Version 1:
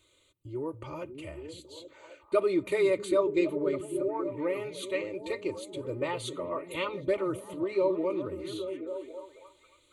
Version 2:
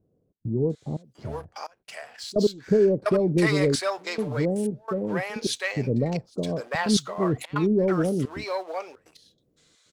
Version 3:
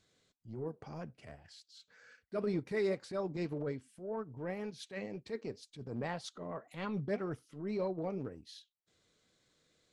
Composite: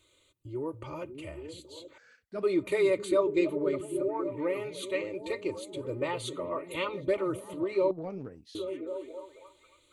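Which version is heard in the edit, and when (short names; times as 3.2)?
1
1.98–2.43 from 3
7.91–8.55 from 3
not used: 2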